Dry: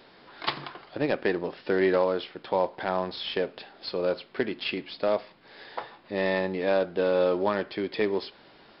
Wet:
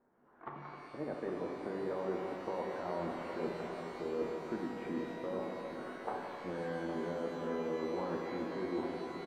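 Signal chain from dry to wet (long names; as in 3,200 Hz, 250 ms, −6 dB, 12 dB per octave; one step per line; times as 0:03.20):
source passing by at 0:02.75, 24 m/s, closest 7.7 metres
camcorder AGC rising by 13 dB per second
low-pass filter 1,500 Hz 24 dB per octave
parametric band 260 Hz +5.5 dB 0.35 octaves
reversed playback
downward compressor, threshold −36 dBFS, peak gain reduction 14.5 dB
reversed playback
speed change −5%
on a send: single-tap delay 813 ms −10 dB
on the sum: reverb with rising layers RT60 3.7 s, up +12 semitones, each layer −8 dB, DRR 0 dB
level −1.5 dB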